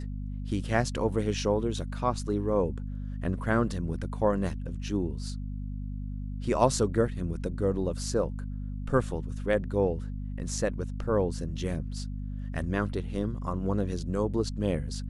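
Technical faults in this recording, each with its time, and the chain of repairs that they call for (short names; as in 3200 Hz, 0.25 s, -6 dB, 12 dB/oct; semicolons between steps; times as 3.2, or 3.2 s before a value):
hum 50 Hz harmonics 5 -35 dBFS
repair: de-hum 50 Hz, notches 5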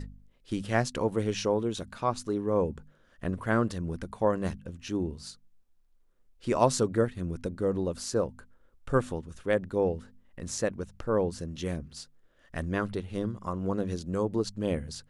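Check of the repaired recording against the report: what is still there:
none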